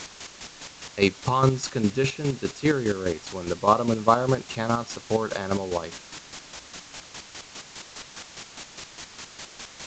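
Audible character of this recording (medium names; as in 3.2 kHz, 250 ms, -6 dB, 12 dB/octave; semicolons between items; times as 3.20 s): a quantiser's noise floor 6-bit, dither triangular; chopped level 4.9 Hz, depth 60%, duty 30%; A-law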